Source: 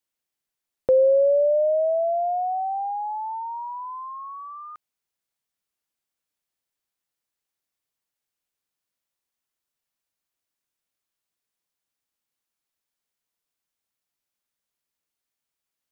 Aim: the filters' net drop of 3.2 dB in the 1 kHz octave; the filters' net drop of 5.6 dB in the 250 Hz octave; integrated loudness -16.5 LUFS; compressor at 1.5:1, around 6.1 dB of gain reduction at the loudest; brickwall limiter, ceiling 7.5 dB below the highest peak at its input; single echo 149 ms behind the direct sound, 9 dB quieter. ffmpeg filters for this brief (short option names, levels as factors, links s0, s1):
-af "equalizer=f=250:t=o:g=-8,equalizer=f=1000:t=o:g=-4,acompressor=threshold=0.0178:ratio=1.5,alimiter=level_in=1.12:limit=0.0631:level=0:latency=1,volume=0.891,aecho=1:1:149:0.355,volume=5.96"